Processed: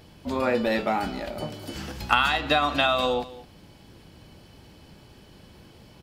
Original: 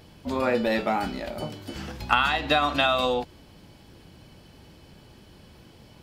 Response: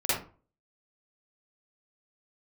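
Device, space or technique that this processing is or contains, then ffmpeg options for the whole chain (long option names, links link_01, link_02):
ducked delay: -filter_complex "[0:a]asplit=3[link_01][link_02][link_03];[link_02]adelay=212,volume=-8dB[link_04];[link_03]apad=whole_len=275128[link_05];[link_04][link_05]sidechaincompress=threshold=-30dB:ratio=8:attack=16:release=1360[link_06];[link_01][link_06]amix=inputs=2:normalize=0,asettb=1/sr,asplit=3[link_07][link_08][link_09];[link_07]atrim=end=1.544[link_10];[link_08]atrim=start=1.54:end=2.38,asetpts=PTS-STARTPTS,afade=type=in:duration=0.004:curve=qsin,afade=type=out:start_time=0.836:duration=0.004:curve=qsin,highshelf=frequency=4900:gain=5.5[link_11];[link_09]atrim=start=2.376[link_12];[link_10][link_11]acrossfade=duration=0.004:curve1=hsin:curve2=qsin[link_13];[link_13][link_12]acrossfade=duration=0.004:curve1=qsin:curve2=hsin"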